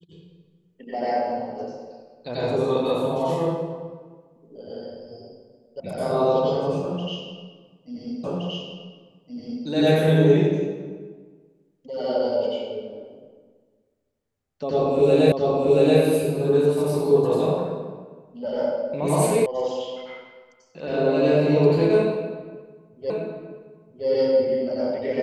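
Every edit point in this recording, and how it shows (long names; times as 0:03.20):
0:05.80: cut off before it has died away
0:08.24: the same again, the last 1.42 s
0:15.32: the same again, the last 0.68 s
0:19.46: cut off before it has died away
0:23.10: the same again, the last 0.97 s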